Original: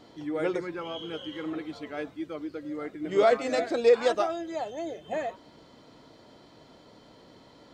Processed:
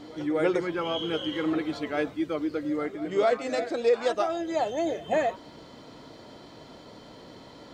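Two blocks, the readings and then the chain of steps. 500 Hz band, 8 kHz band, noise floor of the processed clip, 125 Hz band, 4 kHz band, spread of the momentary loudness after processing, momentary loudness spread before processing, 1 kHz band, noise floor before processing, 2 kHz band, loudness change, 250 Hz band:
0.0 dB, can't be measured, −49 dBFS, +5.0 dB, +4.0 dB, 22 LU, 14 LU, +1.5 dB, −55 dBFS, +2.0 dB, +1.0 dB, +5.0 dB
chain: speech leveller within 5 dB 0.5 s
echo ahead of the sound 252 ms −20 dB
level +2 dB

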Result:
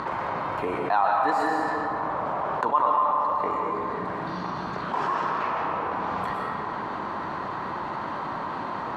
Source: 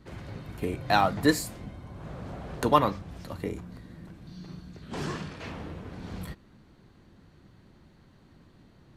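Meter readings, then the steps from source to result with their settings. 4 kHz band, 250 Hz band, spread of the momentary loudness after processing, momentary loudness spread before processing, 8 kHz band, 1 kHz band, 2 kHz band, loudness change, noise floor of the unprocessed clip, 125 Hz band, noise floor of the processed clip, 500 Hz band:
−4.5 dB, −1.5 dB, 9 LU, 21 LU, below −10 dB, +9.0 dB, +4.5 dB, +3.0 dB, −58 dBFS, −4.0 dB, −32 dBFS, +3.0 dB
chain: upward compression, threshold −38 dBFS
resonant band-pass 1,000 Hz, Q 3.6
comb and all-pass reverb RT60 1.7 s, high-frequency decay 0.75×, pre-delay 80 ms, DRR 1.5 dB
envelope flattener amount 70%

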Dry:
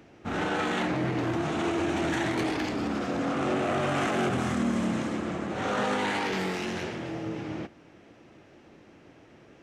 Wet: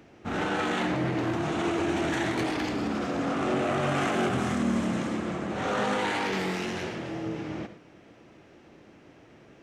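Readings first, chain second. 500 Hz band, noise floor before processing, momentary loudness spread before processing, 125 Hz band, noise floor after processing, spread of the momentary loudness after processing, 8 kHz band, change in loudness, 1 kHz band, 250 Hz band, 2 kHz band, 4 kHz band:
+0.5 dB, −55 dBFS, 8 LU, +0.5 dB, −54 dBFS, 7 LU, +0.5 dB, +0.5 dB, +0.5 dB, +0.5 dB, +0.5 dB, +0.5 dB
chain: reverb whose tail is shaped and stops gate 130 ms rising, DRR 10.5 dB

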